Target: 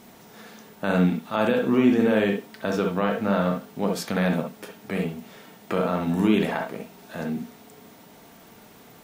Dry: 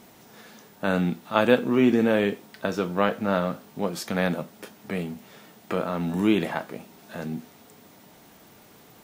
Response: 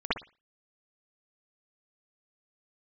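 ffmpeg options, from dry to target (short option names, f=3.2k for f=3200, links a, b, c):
-filter_complex "[0:a]alimiter=limit=-13.5dB:level=0:latency=1:release=29,asplit=2[a][b];[1:a]atrim=start_sample=2205,afade=t=out:st=0.14:d=0.01,atrim=end_sample=6615[c];[b][c]afir=irnorm=-1:irlink=0,volume=-12.5dB[d];[a][d]amix=inputs=2:normalize=0"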